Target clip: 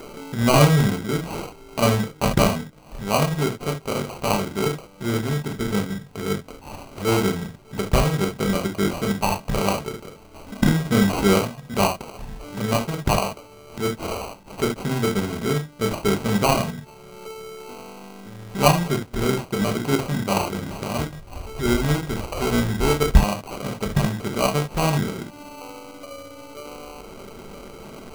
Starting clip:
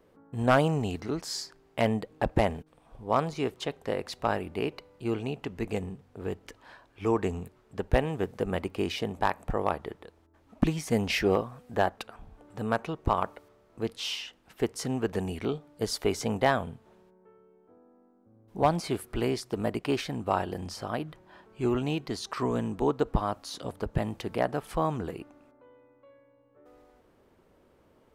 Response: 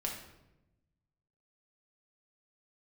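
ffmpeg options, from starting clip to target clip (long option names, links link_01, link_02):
-filter_complex "[1:a]atrim=start_sample=2205,afade=type=out:start_time=0.13:duration=0.01,atrim=end_sample=6174[link_01];[0:a][link_01]afir=irnorm=-1:irlink=0,adynamicequalizer=threshold=0.00891:dfrequency=130:dqfactor=0.9:tfrequency=130:tqfactor=0.9:attack=5:release=100:ratio=0.375:range=3.5:mode=boostabove:tftype=bell,lowpass=8600,acrusher=samples=25:mix=1:aa=0.000001,acompressor=mode=upward:threshold=-27dB:ratio=2.5,acrusher=bits=3:mode=log:mix=0:aa=0.000001,asettb=1/sr,asplit=3[link_02][link_03][link_04];[link_02]atrim=end=20.994[link_05];[link_03]atrim=start=20.99:end=23.2,asetpts=PTS-STARTPTS,afade=type=in:duration=0.004:curve=qsin,afade=type=out:start_time=2.206:duration=0.004:curve=qsin,lowshelf=frequency=100:width_type=q:width=1.5:gain=10[link_06];[link_04]atrim=start=23.196[link_07];[link_05][link_06]acrossfade=duration=0.004:curve1=hsin:curve2=qsin[link_08];[link_08][link_07]acrossfade=duration=0.004:curve1=qsin:curve2=hsin,volume=3.5dB"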